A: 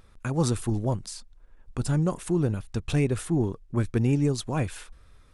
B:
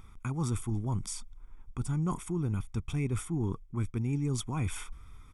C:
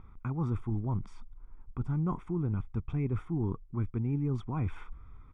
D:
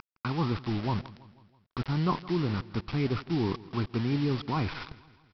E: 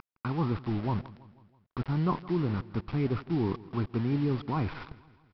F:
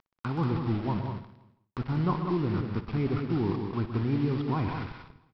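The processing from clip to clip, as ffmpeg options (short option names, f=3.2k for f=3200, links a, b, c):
-af "equalizer=f=4.3k:w=5.8:g=-14,aecho=1:1:0.9:0.72,areverse,acompressor=threshold=-29dB:ratio=5,areverse"
-af "lowpass=1.5k"
-af "aemphasis=mode=production:type=bsi,aresample=11025,acrusher=bits=7:mix=0:aa=0.000001,aresample=44100,aecho=1:1:163|326|489|652:0.106|0.0572|0.0309|0.0167,volume=9dB"
-af "lowpass=f=1.5k:p=1"
-filter_complex "[0:a]agate=range=-27dB:threshold=-55dB:ratio=16:detection=peak,asplit=2[a][b];[b]aecho=0:1:60|126|187|243:0.178|0.316|0.473|0.178[c];[a][c]amix=inputs=2:normalize=0"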